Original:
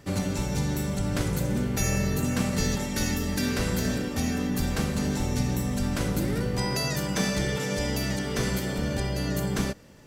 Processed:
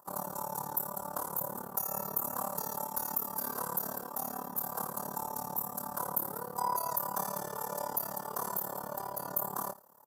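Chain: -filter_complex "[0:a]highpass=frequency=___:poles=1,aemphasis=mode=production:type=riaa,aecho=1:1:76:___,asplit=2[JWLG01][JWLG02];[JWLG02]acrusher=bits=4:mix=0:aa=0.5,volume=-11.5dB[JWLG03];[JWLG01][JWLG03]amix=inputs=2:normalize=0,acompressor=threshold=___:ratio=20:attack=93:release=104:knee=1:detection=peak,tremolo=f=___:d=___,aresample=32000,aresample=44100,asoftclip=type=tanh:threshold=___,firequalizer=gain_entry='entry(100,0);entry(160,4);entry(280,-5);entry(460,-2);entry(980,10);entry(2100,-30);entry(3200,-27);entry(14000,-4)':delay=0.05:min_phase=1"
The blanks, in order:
620, 0.158, -23dB, 36, 0.919, -13dB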